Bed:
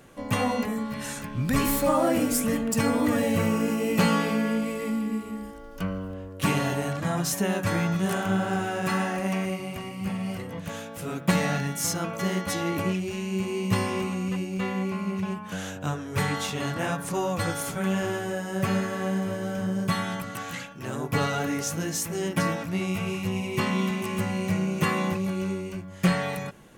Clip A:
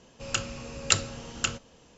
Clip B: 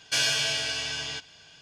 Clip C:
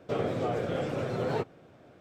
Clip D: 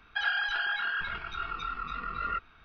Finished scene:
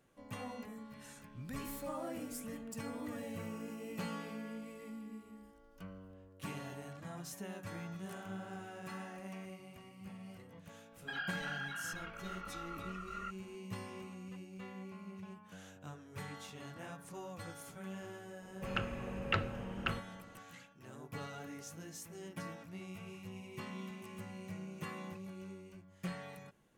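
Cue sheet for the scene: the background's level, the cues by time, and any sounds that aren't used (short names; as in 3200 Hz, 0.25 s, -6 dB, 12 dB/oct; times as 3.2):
bed -19.5 dB
10.92 add D -12 dB
18.42 add A -3.5 dB + LPF 2500 Hz 24 dB/oct
not used: B, C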